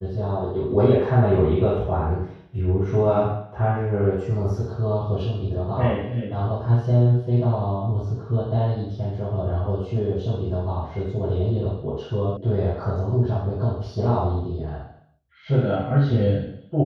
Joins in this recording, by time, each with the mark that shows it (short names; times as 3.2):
12.37 sound cut off